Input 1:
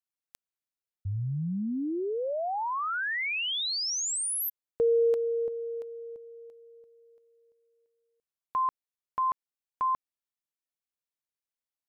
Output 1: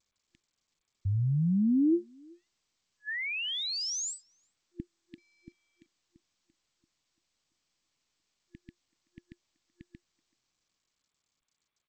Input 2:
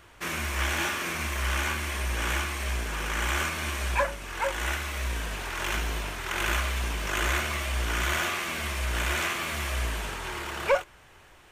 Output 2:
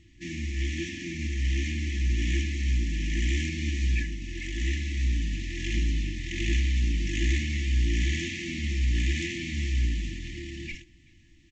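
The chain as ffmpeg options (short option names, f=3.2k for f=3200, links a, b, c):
-filter_complex "[0:a]dynaudnorm=f=150:g=21:m=4dB,lowshelf=f=540:t=q:w=1.5:g=9,asplit=2[a][b];[b]adelay=380,highpass=300,lowpass=3.4k,asoftclip=type=hard:threshold=-15.5dB,volume=-25dB[c];[a][c]amix=inputs=2:normalize=0,afftfilt=real='re*(1-between(b*sr/4096,350,1700))':imag='im*(1-between(b*sr/4096,350,1700))':win_size=4096:overlap=0.75,volume=-7dB" -ar 16000 -c:a g722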